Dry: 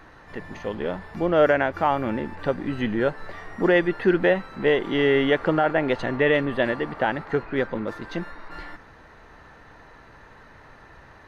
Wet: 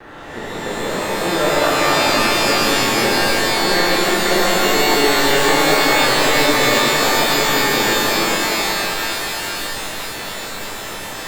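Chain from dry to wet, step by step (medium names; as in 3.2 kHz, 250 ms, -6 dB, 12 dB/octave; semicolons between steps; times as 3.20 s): spectral levelling over time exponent 0.6; gate with hold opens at -26 dBFS; in parallel at -0.5 dB: peak limiter -12.5 dBFS, peak gain reduction 8.5 dB; on the sum: crossover distortion -45 dBFS; pitch-shifted reverb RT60 3.8 s, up +12 st, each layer -2 dB, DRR -8.5 dB; trim -13 dB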